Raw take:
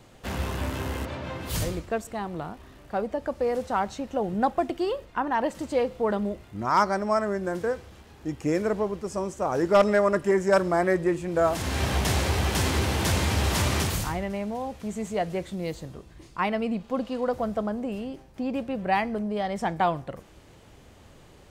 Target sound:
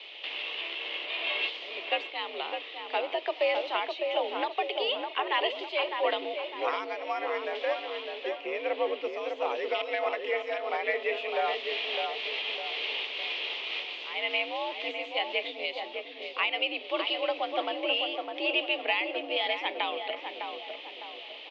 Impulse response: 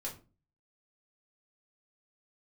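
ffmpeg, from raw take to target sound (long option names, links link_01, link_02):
-filter_complex "[0:a]aexciter=amount=8.1:drive=9.9:freq=2300,acompressor=threshold=-17dB:ratio=6,alimiter=limit=-14dB:level=0:latency=1:release=488,asettb=1/sr,asplit=3[link_01][link_02][link_03];[link_01]atrim=end=8.374[link_04];[link_02]atrim=start=8.37:end=9.13,asetpts=PTS-STARTPTS,afade=type=in:duration=0.004:curve=qsin,afade=type=out:start_time=0.756:duration=0.004:curve=qsin,aemphasis=mode=reproduction:type=bsi[link_05];[link_03]atrim=start=9.126[link_06];[link_04][link_05]acrossfade=duration=0.004:curve1=hsin:curve2=qsin[link_07];[link_07][link_06]acrossfade=duration=0.004:curve1=qsin:curve2=hsin,asplit=2[link_08][link_09];[link_09]adelay=606,lowpass=frequency=1400:poles=1,volume=-4dB,asplit=2[link_10][link_11];[link_11]adelay=606,lowpass=frequency=1400:poles=1,volume=0.49,asplit=2[link_12][link_13];[link_13]adelay=606,lowpass=frequency=1400:poles=1,volume=0.49,asplit=2[link_14][link_15];[link_15]adelay=606,lowpass=frequency=1400:poles=1,volume=0.49,asplit=2[link_16][link_17];[link_17]adelay=606,lowpass=frequency=1400:poles=1,volume=0.49,asplit=2[link_18][link_19];[link_19]adelay=606,lowpass=frequency=1400:poles=1,volume=0.49[link_20];[link_10][link_12][link_14][link_16][link_18][link_20]amix=inputs=6:normalize=0[link_21];[link_08][link_21]amix=inputs=2:normalize=0,highpass=frequency=320:width_type=q:width=0.5412,highpass=frequency=320:width_type=q:width=1.307,lowpass=frequency=3000:width_type=q:width=0.5176,lowpass=frequency=3000:width_type=q:width=0.7071,lowpass=frequency=3000:width_type=q:width=1.932,afreqshift=74"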